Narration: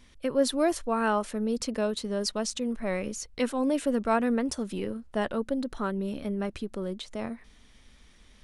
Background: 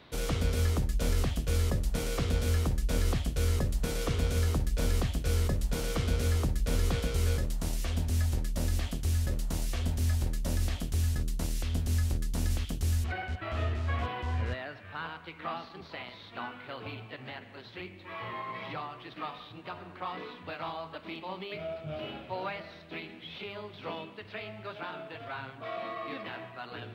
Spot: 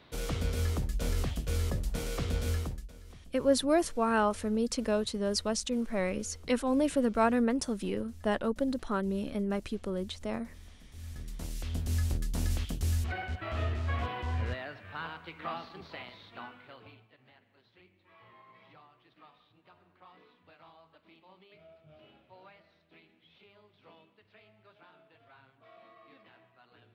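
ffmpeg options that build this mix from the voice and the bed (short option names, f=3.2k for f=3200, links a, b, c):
-filter_complex "[0:a]adelay=3100,volume=-1dB[a];[1:a]volume=19dB,afade=t=out:st=2.5:d=0.42:silence=0.1,afade=t=in:st=10.91:d=1.16:silence=0.0794328,afade=t=out:st=15.77:d=1.31:silence=0.125893[b];[a][b]amix=inputs=2:normalize=0"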